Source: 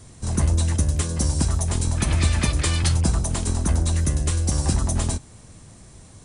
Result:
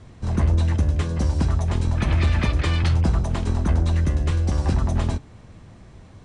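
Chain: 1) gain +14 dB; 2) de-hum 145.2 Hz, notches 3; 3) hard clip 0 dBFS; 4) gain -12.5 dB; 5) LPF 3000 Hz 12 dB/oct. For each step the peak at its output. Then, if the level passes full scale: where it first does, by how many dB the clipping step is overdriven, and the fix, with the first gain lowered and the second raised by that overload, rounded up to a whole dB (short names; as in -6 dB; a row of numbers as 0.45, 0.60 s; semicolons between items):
+7.0, +6.5, 0.0, -12.5, -12.5 dBFS; step 1, 6.5 dB; step 1 +7 dB, step 4 -5.5 dB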